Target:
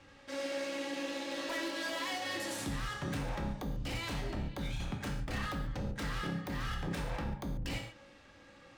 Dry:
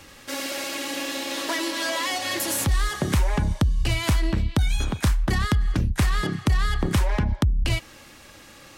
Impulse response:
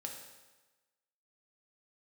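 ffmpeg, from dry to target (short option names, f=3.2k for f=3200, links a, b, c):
-filter_complex "[0:a]adynamicsmooth=sensitivity=3:basefreq=4.3k,aeval=exprs='0.0891*(abs(mod(val(0)/0.0891+3,4)-2)-1)':c=same[a];[1:a]atrim=start_sample=2205,atrim=end_sample=6615[b];[a][b]afir=irnorm=-1:irlink=0,volume=-7dB"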